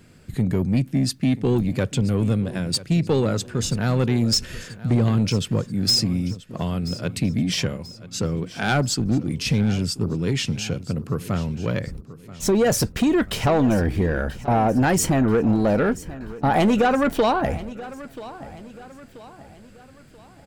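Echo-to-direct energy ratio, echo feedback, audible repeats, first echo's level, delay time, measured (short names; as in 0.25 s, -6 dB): -16.0 dB, 44%, 3, -17.0 dB, 0.983 s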